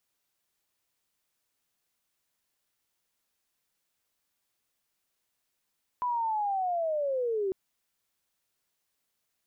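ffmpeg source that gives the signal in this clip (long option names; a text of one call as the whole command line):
ffmpeg -f lavfi -i "aevalsrc='0.0473*sin(2*PI*(1000*t-630*t*t/(2*1.5)))':duration=1.5:sample_rate=44100" out.wav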